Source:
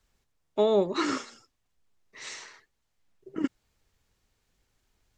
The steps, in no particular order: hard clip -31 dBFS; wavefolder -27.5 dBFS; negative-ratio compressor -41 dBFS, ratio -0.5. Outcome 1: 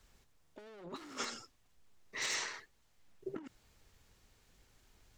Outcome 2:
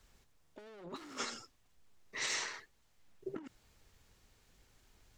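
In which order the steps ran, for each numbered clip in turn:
hard clip > negative-ratio compressor > wavefolder; hard clip > wavefolder > negative-ratio compressor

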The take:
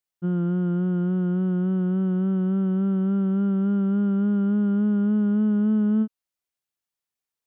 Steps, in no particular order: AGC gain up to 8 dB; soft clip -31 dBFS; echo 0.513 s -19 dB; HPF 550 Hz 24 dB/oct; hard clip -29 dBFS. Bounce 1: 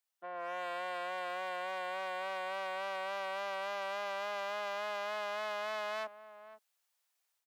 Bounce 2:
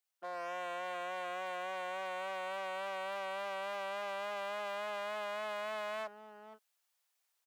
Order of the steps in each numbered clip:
soft clip > AGC > echo > hard clip > HPF; echo > AGC > hard clip > HPF > soft clip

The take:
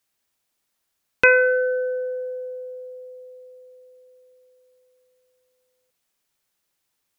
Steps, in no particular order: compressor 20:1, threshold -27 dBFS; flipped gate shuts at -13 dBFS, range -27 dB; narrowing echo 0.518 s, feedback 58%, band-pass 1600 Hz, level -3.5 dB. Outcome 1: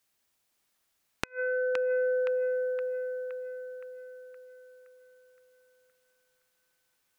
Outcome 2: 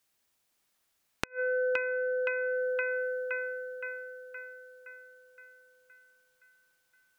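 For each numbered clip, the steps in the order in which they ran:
compressor > flipped gate > narrowing echo; narrowing echo > compressor > flipped gate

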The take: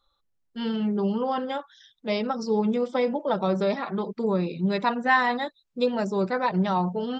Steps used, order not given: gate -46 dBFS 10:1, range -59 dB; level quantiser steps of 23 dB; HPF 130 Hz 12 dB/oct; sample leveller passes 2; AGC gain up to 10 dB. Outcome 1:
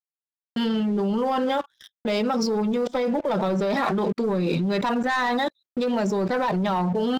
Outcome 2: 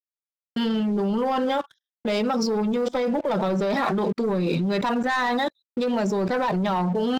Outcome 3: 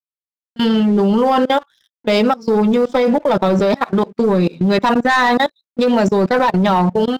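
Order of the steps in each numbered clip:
HPF > sample leveller > AGC > level quantiser > gate; HPF > gate > AGC > sample leveller > level quantiser; HPF > sample leveller > gate > level quantiser > AGC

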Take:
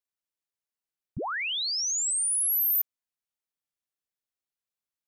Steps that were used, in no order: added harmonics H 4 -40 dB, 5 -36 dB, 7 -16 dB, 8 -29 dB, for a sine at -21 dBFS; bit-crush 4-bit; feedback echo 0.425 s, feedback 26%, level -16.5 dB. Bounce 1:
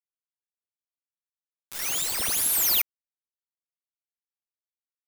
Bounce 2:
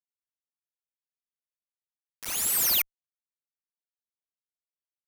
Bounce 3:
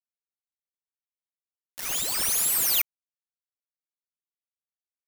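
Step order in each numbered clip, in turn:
feedback echo > added harmonics > bit-crush; feedback echo > bit-crush > added harmonics; added harmonics > feedback echo > bit-crush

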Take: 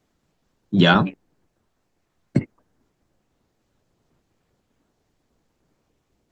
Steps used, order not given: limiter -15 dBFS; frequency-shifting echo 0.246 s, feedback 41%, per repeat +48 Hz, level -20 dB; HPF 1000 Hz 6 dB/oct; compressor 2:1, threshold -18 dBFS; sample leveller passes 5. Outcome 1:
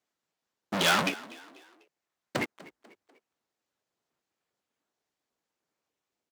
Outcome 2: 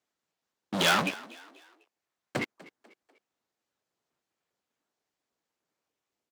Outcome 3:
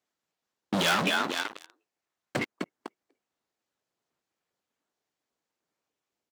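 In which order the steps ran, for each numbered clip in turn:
limiter > sample leveller > compressor > frequency-shifting echo > HPF; sample leveller > limiter > HPF > compressor > frequency-shifting echo; frequency-shifting echo > sample leveller > compressor > HPF > limiter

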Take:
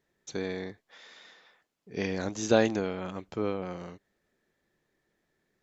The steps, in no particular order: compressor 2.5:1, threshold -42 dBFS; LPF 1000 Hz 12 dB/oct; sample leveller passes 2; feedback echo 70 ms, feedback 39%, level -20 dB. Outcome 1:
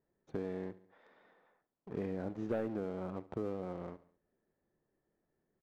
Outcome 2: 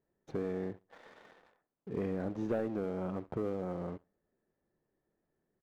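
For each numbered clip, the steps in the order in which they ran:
LPF > sample leveller > feedback echo > compressor; LPF > compressor > feedback echo > sample leveller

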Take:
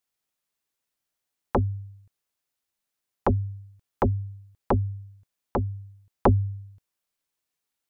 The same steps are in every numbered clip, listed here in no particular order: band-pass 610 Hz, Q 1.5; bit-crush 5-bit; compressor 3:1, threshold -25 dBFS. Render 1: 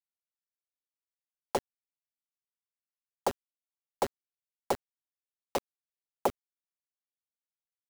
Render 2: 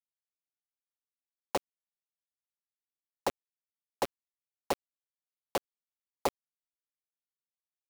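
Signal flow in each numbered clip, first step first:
band-pass > bit-crush > compressor; compressor > band-pass > bit-crush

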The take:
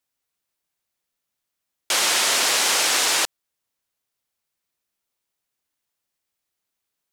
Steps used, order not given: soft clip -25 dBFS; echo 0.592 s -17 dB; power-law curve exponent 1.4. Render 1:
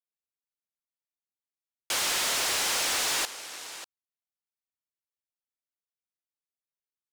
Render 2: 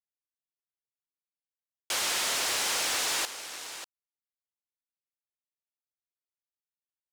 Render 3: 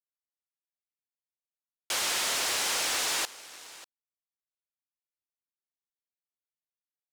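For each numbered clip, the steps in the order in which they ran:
echo > soft clip > power-law curve; power-law curve > echo > soft clip; echo > power-law curve > soft clip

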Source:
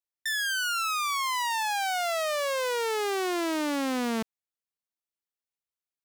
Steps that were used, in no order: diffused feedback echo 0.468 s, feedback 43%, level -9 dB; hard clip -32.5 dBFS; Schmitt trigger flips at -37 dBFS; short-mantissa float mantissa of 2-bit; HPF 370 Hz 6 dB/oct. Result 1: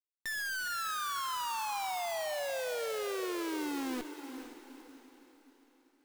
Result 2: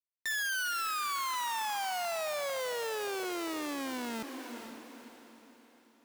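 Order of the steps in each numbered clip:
HPF > hard clip > Schmitt trigger > diffused feedback echo > short-mantissa float; Schmitt trigger > short-mantissa float > diffused feedback echo > hard clip > HPF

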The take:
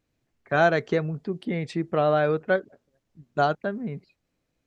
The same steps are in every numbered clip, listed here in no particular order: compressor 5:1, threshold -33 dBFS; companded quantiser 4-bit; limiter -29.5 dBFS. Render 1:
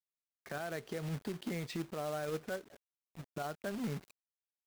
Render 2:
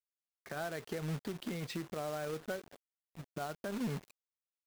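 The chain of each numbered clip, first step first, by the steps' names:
companded quantiser > compressor > limiter; compressor > companded quantiser > limiter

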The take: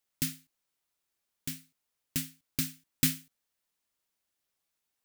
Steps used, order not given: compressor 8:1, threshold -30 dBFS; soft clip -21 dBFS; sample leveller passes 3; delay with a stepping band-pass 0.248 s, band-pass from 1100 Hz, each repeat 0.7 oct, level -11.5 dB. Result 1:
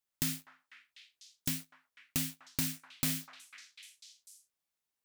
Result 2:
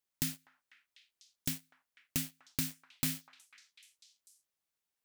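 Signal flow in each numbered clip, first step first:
soft clip > sample leveller > delay with a stepping band-pass > compressor; sample leveller > compressor > soft clip > delay with a stepping band-pass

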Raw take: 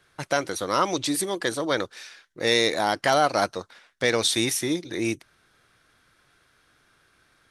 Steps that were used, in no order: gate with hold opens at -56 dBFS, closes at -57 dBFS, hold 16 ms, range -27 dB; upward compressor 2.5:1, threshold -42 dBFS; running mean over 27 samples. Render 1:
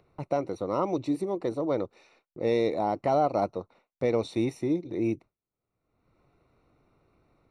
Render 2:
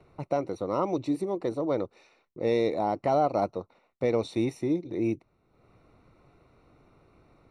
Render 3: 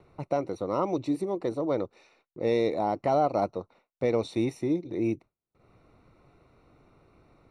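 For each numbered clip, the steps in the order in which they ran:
running mean > gate with hold > upward compressor; gate with hold > upward compressor > running mean; upward compressor > running mean > gate with hold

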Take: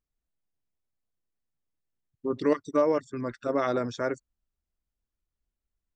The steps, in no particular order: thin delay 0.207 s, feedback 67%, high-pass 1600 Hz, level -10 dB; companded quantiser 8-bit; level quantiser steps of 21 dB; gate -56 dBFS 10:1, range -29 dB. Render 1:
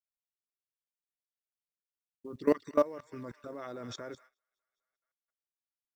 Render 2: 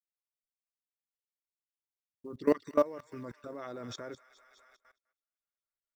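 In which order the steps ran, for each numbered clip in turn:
thin delay > level quantiser > companded quantiser > gate; companded quantiser > thin delay > gate > level quantiser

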